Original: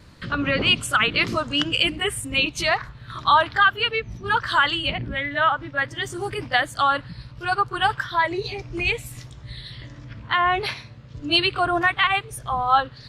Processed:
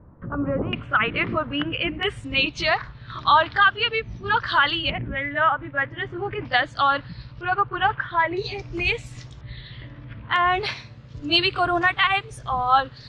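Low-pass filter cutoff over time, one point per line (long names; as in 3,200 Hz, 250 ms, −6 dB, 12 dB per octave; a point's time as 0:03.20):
low-pass filter 24 dB per octave
1,100 Hz
from 0:00.73 2,400 Hz
from 0:02.03 5,100 Hz
from 0:04.90 2,600 Hz
from 0:06.45 5,100 Hz
from 0:07.41 2,800 Hz
from 0:08.37 6,800 Hz
from 0:09.41 3,400 Hz
from 0:10.36 7,500 Hz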